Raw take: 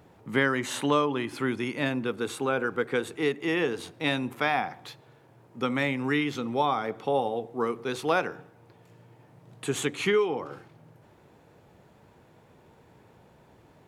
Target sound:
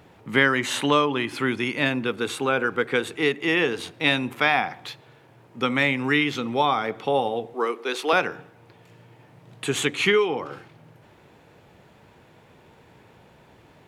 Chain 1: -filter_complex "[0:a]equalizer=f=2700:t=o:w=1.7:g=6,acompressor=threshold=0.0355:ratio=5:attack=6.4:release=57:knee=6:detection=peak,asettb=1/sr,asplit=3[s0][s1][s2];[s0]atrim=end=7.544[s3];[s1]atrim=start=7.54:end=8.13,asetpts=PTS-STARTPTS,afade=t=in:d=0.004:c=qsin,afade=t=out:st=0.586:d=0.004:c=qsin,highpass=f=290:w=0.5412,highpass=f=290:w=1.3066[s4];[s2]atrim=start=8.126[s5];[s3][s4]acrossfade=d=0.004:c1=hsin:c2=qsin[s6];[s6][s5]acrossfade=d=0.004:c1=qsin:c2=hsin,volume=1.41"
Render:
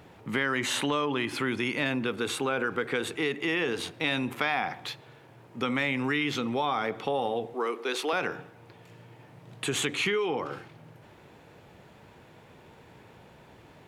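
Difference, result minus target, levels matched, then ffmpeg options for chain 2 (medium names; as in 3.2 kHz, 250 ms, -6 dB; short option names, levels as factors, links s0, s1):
compression: peak gain reduction +11 dB
-filter_complex "[0:a]equalizer=f=2700:t=o:w=1.7:g=6,asettb=1/sr,asplit=3[s0][s1][s2];[s0]atrim=end=7.544[s3];[s1]atrim=start=7.54:end=8.13,asetpts=PTS-STARTPTS,afade=t=in:d=0.004:c=qsin,afade=t=out:st=0.586:d=0.004:c=qsin,highpass=f=290:w=0.5412,highpass=f=290:w=1.3066[s4];[s2]atrim=start=8.126[s5];[s3][s4]acrossfade=d=0.004:c1=hsin:c2=qsin[s6];[s6][s5]acrossfade=d=0.004:c1=qsin:c2=hsin,volume=1.41"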